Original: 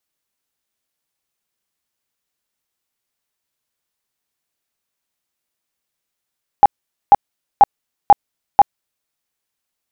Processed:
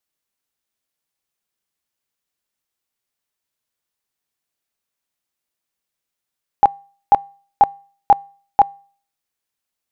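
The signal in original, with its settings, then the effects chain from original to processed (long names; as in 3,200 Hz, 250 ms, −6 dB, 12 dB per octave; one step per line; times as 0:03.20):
tone bursts 811 Hz, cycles 22, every 0.49 s, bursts 5, −2 dBFS
tuned comb filter 160 Hz, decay 0.46 s, harmonics odd, mix 30%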